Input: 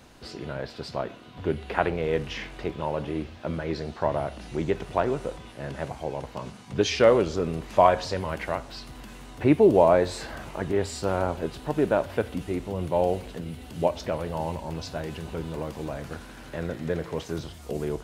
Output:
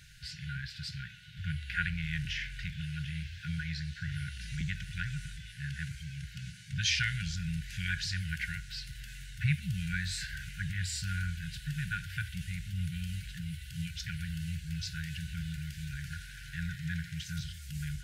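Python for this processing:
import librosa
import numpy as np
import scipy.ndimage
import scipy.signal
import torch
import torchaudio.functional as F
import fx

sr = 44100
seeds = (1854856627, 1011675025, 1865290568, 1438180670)

y = fx.brickwall_bandstop(x, sr, low_hz=180.0, high_hz=1400.0)
y = fx.band_squash(y, sr, depth_pct=40, at=(2.25, 4.61))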